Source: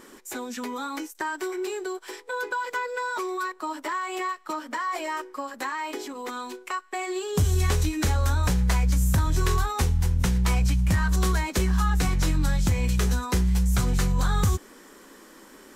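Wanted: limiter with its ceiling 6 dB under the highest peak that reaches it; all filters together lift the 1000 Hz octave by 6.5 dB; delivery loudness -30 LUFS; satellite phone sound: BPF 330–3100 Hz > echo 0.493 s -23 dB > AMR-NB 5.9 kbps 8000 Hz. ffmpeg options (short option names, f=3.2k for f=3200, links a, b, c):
-af "equalizer=f=1k:t=o:g=7.5,alimiter=limit=-16dB:level=0:latency=1,highpass=330,lowpass=3.1k,aecho=1:1:493:0.0708,volume=0.5dB" -ar 8000 -c:a libopencore_amrnb -b:a 5900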